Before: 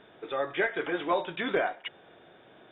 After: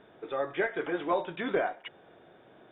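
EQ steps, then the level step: high shelf 2000 Hz -8.5 dB; 0.0 dB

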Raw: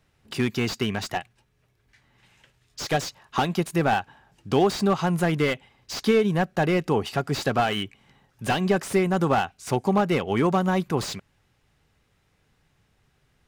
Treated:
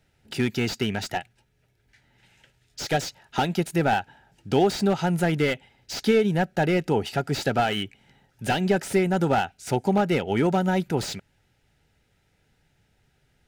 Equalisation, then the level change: Butterworth band-stop 1100 Hz, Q 4.2; 0.0 dB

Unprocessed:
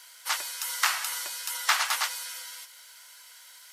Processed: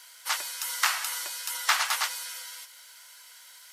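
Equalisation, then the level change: HPF 170 Hz; 0.0 dB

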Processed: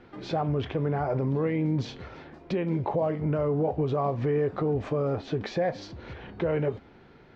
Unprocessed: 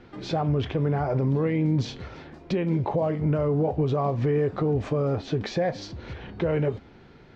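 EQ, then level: low shelf 260 Hz -5.5 dB; high shelf 3900 Hz -8.5 dB; 0.0 dB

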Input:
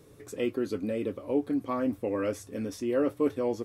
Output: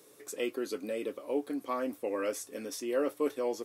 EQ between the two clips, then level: HPF 360 Hz 12 dB/oct; high shelf 4400 Hz +9 dB; -1.5 dB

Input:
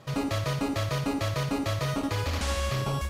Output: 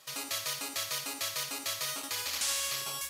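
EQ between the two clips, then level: differentiator; +8.0 dB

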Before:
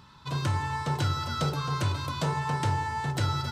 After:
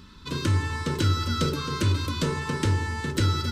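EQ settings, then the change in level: low shelf 270 Hz +11.5 dB; fixed phaser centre 310 Hz, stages 4; +5.0 dB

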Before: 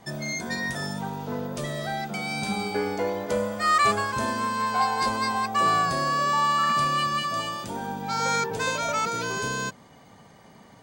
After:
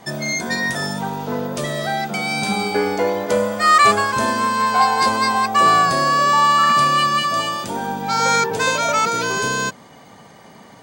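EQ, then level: low shelf 100 Hz -11 dB; +8.5 dB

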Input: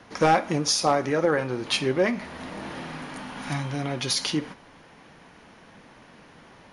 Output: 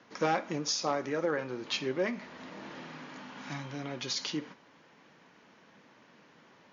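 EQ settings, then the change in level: HPF 160 Hz 12 dB/oct; brick-wall FIR low-pass 7100 Hz; bell 740 Hz -4 dB 0.29 oct; -8.0 dB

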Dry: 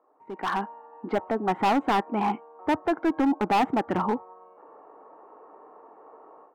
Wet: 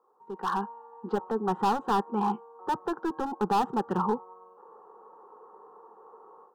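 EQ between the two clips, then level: fixed phaser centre 430 Hz, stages 8; 0.0 dB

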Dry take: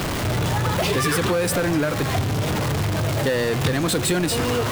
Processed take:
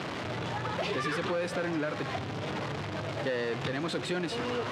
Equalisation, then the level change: BPF 130–4000 Hz; low shelf 280 Hz -4 dB; -8.5 dB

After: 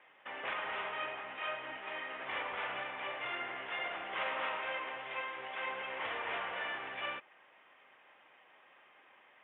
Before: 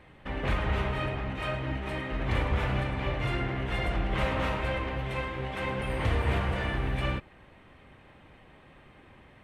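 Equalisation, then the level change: HPF 740 Hz 12 dB/oct; steep low-pass 3500 Hz 96 dB/oct; -3.0 dB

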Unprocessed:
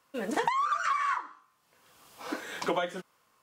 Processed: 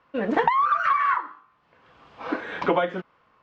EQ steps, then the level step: LPF 2700 Hz 12 dB/oct; air absorption 100 m; low shelf 61 Hz +8 dB; +8.0 dB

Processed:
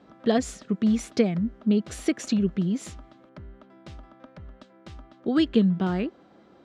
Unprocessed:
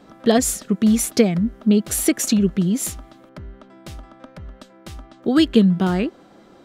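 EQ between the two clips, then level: HPF 40 Hz; air absorption 110 m; -6.0 dB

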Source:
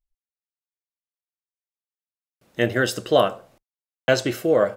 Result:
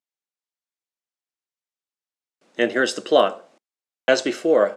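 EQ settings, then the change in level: HPF 220 Hz 24 dB/oct; LPF 8600 Hz 24 dB/oct; +1.5 dB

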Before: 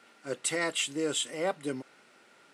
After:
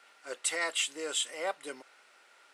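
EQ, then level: HPF 630 Hz 12 dB/oct; 0.0 dB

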